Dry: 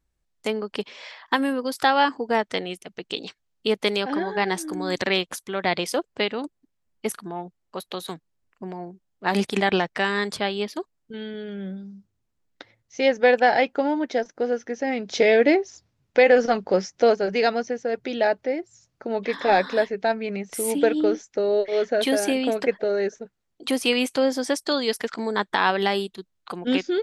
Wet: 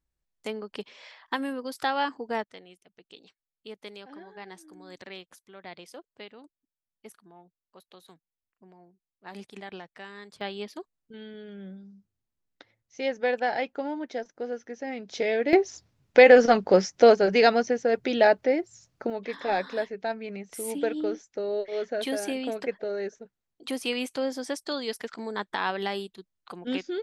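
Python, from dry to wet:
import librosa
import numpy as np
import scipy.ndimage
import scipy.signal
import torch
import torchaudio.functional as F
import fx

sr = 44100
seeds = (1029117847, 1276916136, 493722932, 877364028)

y = fx.gain(x, sr, db=fx.steps((0.0, -8.0), (2.44, -20.0), (10.41, -9.0), (15.53, 2.0), (19.1, -8.0)))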